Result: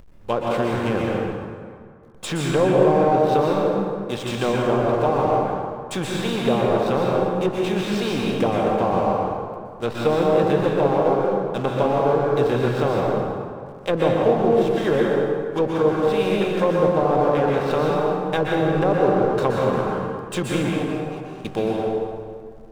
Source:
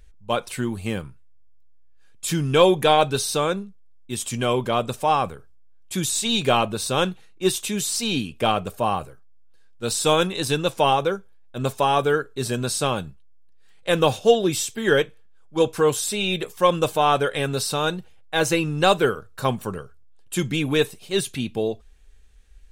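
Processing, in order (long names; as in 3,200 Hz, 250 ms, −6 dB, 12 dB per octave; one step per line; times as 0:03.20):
compressor on every frequency bin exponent 0.6
0:20.69–0:21.45: formant filter a
treble cut that deepens with the level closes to 750 Hz, closed at −12 dBFS
slack as between gear wheels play −29.5 dBFS
dense smooth reverb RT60 2.1 s, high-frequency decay 0.6×, pre-delay 110 ms, DRR −3 dB
level −4.5 dB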